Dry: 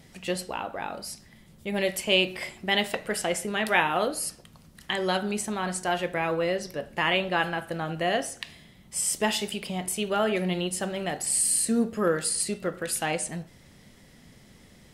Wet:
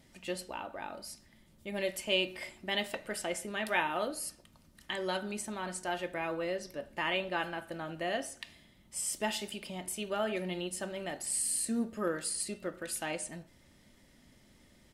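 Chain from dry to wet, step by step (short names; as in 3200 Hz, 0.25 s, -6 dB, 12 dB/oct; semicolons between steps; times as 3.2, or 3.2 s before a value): comb 3.3 ms, depth 36%; gain -8.5 dB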